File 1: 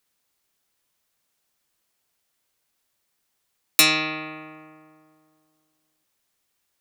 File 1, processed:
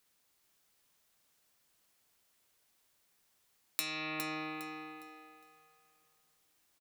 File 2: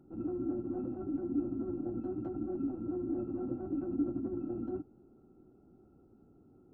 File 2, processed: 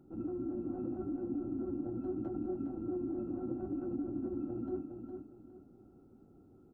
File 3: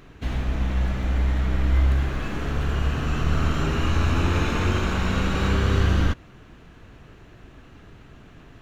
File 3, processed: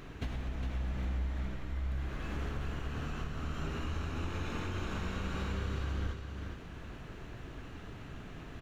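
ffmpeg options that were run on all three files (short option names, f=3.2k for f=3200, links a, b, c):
-af "acompressor=threshold=-34dB:ratio=12,aecho=1:1:409|818|1227|1636:0.473|0.142|0.0426|0.0128"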